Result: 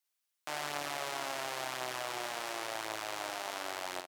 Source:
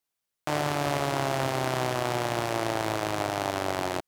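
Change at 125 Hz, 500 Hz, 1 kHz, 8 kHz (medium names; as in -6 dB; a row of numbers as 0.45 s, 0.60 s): -24.5 dB, -12.5 dB, -9.5 dB, -4.5 dB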